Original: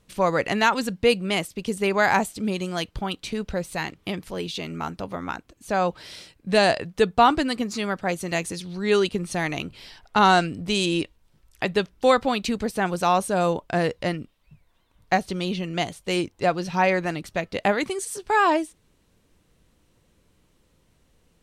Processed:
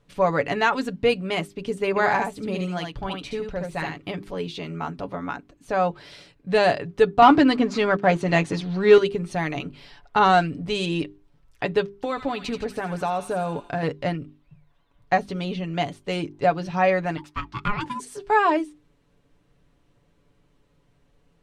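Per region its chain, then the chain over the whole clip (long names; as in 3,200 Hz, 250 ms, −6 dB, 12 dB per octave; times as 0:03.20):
0:01.89–0:04.08: single-tap delay 72 ms −4 dB + amplitude tremolo 1.5 Hz, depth 30%
0:07.22–0:08.98: high-pass filter 82 Hz 24 dB per octave + leveller curve on the samples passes 2 + high-frequency loss of the air 63 metres
0:11.95–0:13.83: downward compressor 5 to 1, threshold −21 dBFS + delay with a high-pass on its return 82 ms, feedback 49%, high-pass 1,600 Hz, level −7.5 dB
0:17.17–0:18.00: Butterworth high-pass 230 Hz 96 dB per octave + ring modulation 620 Hz
whole clip: low-pass filter 2,200 Hz 6 dB per octave; mains-hum notches 50/100/150/200/250/300/350/400 Hz; comb filter 7 ms, depth 51%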